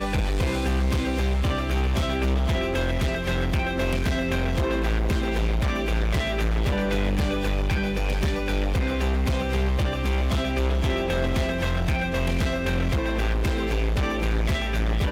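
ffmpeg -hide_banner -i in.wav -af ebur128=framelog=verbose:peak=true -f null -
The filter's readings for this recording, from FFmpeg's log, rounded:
Integrated loudness:
  I:         -25.0 LUFS
  Threshold: -35.0 LUFS
Loudness range:
  LRA:         0.4 LU
  Threshold: -45.0 LUFS
  LRA low:   -25.2 LUFS
  LRA high:  -24.9 LUFS
True peak:
  Peak:      -14.3 dBFS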